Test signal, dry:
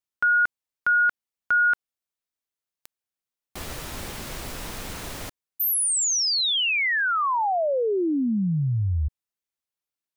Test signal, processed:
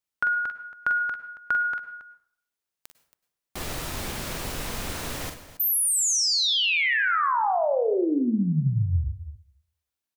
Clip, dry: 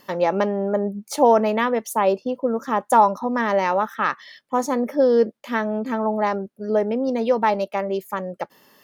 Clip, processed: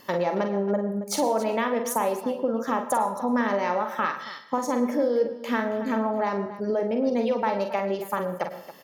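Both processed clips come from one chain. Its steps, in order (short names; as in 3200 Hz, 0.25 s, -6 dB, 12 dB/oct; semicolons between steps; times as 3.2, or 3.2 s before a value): compressor, threshold -24 dBFS; on a send: tapped delay 45/58/275 ms -7/-15/-15 dB; on the sum: plate-style reverb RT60 0.58 s, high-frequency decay 0.65×, pre-delay 90 ms, DRR 12.5 dB; gain +1.5 dB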